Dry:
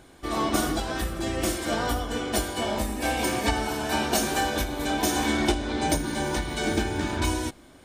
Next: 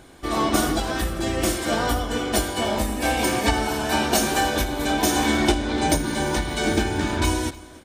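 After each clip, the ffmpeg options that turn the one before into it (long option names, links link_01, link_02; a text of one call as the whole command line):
ffmpeg -i in.wav -af "aecho=1:1:296:0.0944,volume=4dB" out.wav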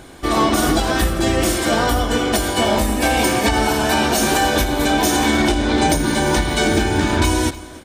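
ffmpeg -i in.wav -af "alimiter=limit=-14dB:level=0:latency=1:release=96,volume=7.5dB" out.wav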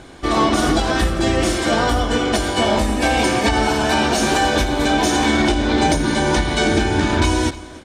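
ffmpeg -i in.wav -af "lowpass=7400" out.wav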